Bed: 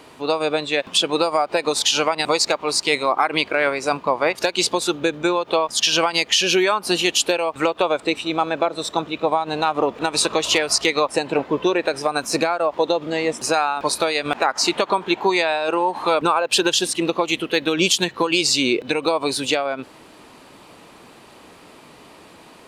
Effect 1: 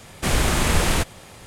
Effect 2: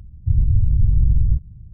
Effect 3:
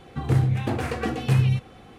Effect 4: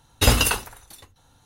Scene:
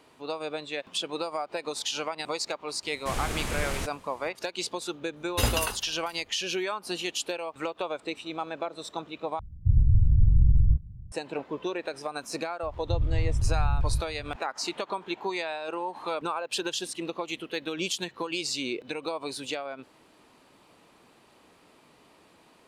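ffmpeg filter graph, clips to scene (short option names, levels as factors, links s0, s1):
-filter_complex "[2:a]asplit=2[s0][s1];[0:a]volume=0.224[s2];[4:a]bandreject=f=5400:w=20[s3];[s1]acompressor=mode=upward:threshold=0.0708:ratio=2.5:attack=3.2:release=140:knee=2.83:detection=peak[s4];[s2]asplit=2[s5][s6];[s5]atrim=end=9.394[s7];[s0]atrim=end=1.73,asetpts=PTS-STARTPTS,volume=0.631[s8];[s6]atrim=start=11.116[s9];[1:a]atrim=end=1.46,asetpts=PTS-STARTPTS,volume=0.251,afade=t=in:d=0.004:c=hsin,afade=t=out:st=1.456:d=0.004:c=hsin,adelay=2830[s10];[s3]atrim=end=1.45,asetpts=PTS-STARTPTS,volume=0.376,afade=t=in:d=0.004:c=hsin,afade=t=out:st=1.446:d=0.004:c=hsin,adelay=5160[s11];[s4]atrim=end=1.73,asetpts=PTS-STARTPTS,volume=0.316,afade=t=in:d=0.004:c=hsin,afade=t=out:st=1.726:d=0.004:c=hsin,adelay=12630[s12];[s7][s8]acrossfade=d=0.004:c1=hsin:c2=hsin[s13];[s13][s9]acrossfade=d=0.004:c1=hsin:c2=hsin[s14];[s14][s10][s11][s12]amix=inputs=4:normalize=0"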